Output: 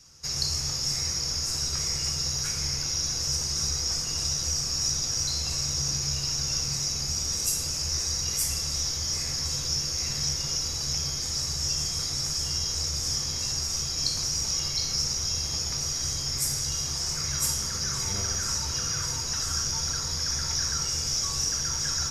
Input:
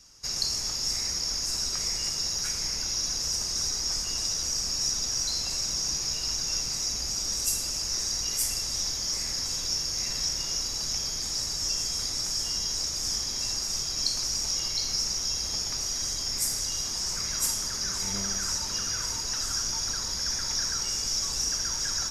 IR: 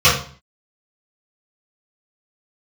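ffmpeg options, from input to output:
-filter_complex "[0:a]asplit=2[s0][s1];[1:a]atrim=start_sample=2205,lowshelf=f=170:g=11[s2];[s1][s2]afir=irnorm=-1:irlink=0,volume=0.0282[s3];[s0][s3]amix=inputs=2:normalize=0"

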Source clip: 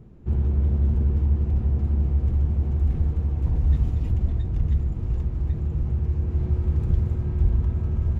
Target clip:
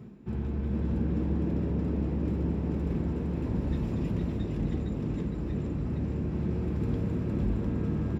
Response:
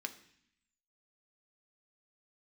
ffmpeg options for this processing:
-filter_complex "[1:a]atrim=start_sample=2205,afade=t=out:st=0.14:d=0.01,atrim=end_sample=6615[s0];[0:a][s0]afir=irnorm=-1:irlink=0,areverse,acompressor=mode=upward:threshold=0.0158:ratio=2.5,areverse,asplit=6[s1][s2][s3][s4][s5][s6];[s2]adelay=461,afreqshift=100,volume=0.668[s7];[s3]adelay=922,afreqshift=200,volume=0.26[s8];[s4]adelay=1383,afreqshift=300,volume=0.101[s9];[s5]adelay=1844,afreqshift=400,volume=0.0398[s10];[s6]adelay=2305,afreqshift=500,volume=0.0155[s11];[s1][s7][s8][s9][s10][s11]amix=inputs=6:normalize=0,volume=1.26"

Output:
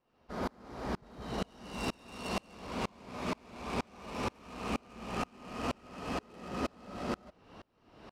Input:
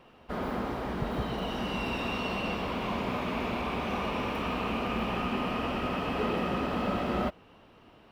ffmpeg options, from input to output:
-af "adynamicsmooth=sensitivity=7:basefreq=4400,aexciter=amount=3.1:drive=8.4:freq=4400,areverse,acompressor=threshold=0.0158:ratio=6,areverse,aeval=exprs='val(0)*pow(10,-33*if(lt(mod(-2.1*n/s,1),2*abs(-2.1)/1000),1-mod(-2.1*n/s,1)/(2*abs(-2.1)/1000),(mod(-2.1*n/s,1)-2*abs(-2.1)/1000)/(1-2*abs(-2.1)/1000))/20)':c=same,volume=2.66"

